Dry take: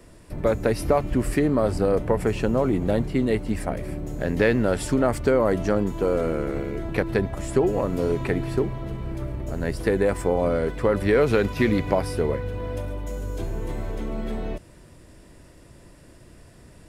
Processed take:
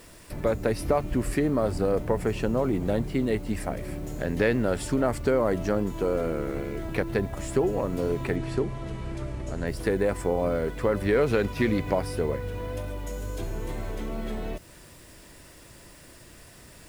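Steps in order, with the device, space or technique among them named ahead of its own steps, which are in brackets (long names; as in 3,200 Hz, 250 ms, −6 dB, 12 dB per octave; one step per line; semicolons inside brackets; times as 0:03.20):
noise-reduction cassette on a plain deck (one half of a high-frequency compander encoder only; tape wow and flutter 22 cents; white noise bed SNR 32 dB)
0:08.36–0:09.67: low-pass filter 9,500 Hz 24 dB per octave
level −3.5 dB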